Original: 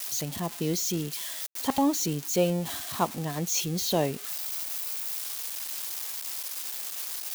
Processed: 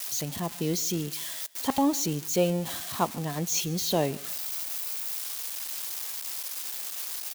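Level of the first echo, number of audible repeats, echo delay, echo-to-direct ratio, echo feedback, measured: -22.5 dB, 2, 147 ms, -22.0 dB, 33%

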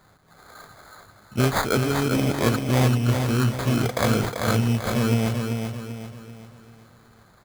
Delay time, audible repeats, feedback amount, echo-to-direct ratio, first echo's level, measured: 389 ms, 4, 42%, -4.5 dB, -5.5 dB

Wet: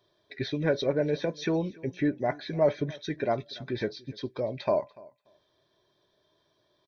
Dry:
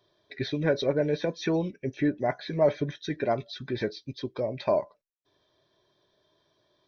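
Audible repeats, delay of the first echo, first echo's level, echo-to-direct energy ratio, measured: 1, 290 ms, -23.0 dB, -23.0 dB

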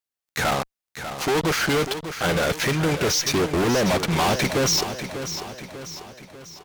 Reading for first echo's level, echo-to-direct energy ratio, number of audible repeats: -10.0 dB, -9.0 dB, 5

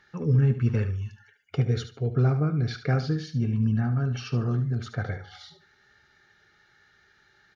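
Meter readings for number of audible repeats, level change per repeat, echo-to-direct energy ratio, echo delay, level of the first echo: 2, -13.0 dB, -11.0 dB, 73 ms, -11.0 dB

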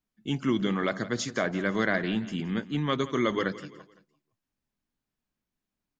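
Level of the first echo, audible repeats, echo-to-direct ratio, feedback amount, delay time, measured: -16.5 dB, 3, -15.5 dB, 40%, 170 ms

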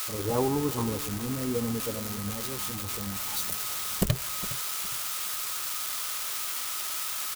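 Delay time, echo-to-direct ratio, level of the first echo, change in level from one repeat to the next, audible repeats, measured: 412 ms, -15.0 dB, -15.5 dB, -11.0 dB, 2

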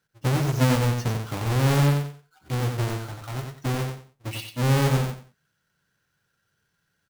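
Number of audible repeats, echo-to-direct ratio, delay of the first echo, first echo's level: 3, -4.5 dB, 91 ms, -5.0 dB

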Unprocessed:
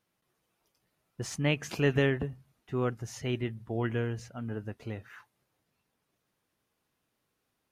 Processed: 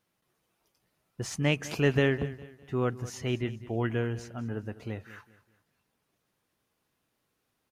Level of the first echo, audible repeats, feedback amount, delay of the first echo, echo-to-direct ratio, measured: -17.0 dB, 3, 36%, 203 ms, -16.5 dB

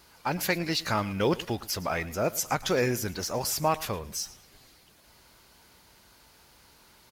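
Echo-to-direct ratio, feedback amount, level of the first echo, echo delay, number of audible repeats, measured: -18.5 dB, 28%, -19.0 dB, 112 ms, 2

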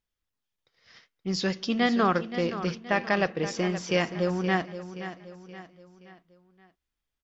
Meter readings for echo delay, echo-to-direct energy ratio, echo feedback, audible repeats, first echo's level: 524 ms, -11.0 dB, 44%, 4, -12.0 dB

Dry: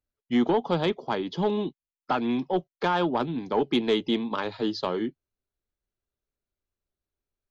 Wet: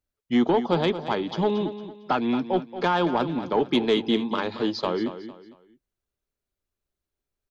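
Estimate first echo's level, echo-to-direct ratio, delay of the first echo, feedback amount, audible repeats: -12.0 dB, -11.5 dB, 227 ms, 33%, 3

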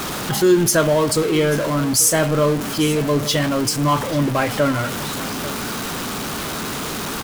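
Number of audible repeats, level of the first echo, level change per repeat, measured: 1, -16.5 dB, no regular repeats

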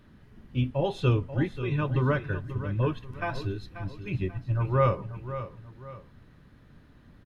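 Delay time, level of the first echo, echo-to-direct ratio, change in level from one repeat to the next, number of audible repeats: 536 ms, -12.0 dB, -11.5 dB, -8.5 dB, 2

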